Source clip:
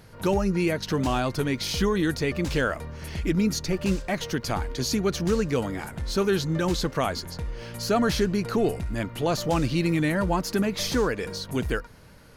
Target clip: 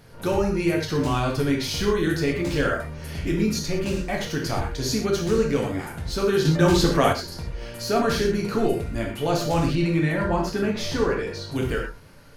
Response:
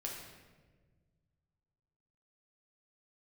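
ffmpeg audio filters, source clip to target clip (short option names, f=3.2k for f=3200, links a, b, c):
-filter_complex "[1:a]atrim=start_sample=2205,afade=t=out:st=0.18:d=0.01,atrim=end_sample=8379[a];[0:a][a]afir=irnorm=-1:irlink=0,asettb=1/sr,asplit=3[b][c][d];[b]atrim=end=6.454[e];[c]atrim=start=6.45:end=7.13,asetpts=PTS-STARTPTS,afade=t=in:d=0.004:c=qsin,afade=t=out:st=0.676:d=0.004:c=qsin,acontrast=36[f];[d]atrim=start=7.126[g];[e][f]acrossfade=d=0.004:c1=hsin:c2=qsin[h];[h][g]acrossfade=d=0.004:c1=qsin:c2=hsin,asettb=1/sr,asplit=3[i][j][k];[i]atrim=end=9.754[l];[j]atrim=start=9.75:end=11.56,asetpts=PTS-STARTPTS,afade=t=in:d=0.004:c=qsin,afade=t=out:st=1.806:d=0.004:c=qsin,highshelf=f=6.9k:g=-11.5[m];[k]atrim=start=11.556[n];[l][m]acrossfade=d=0.004:c1=hsin:c2=qsin[o];[o][n]acrossfade=d=0.004:c1=qsin:c2=hsin,volume=2.5dB"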